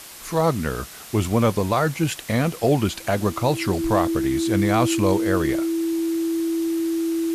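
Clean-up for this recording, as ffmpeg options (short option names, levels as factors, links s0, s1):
-af "adeclick=t=4,bandreject=f=330:w=30,afwtdn=0.011"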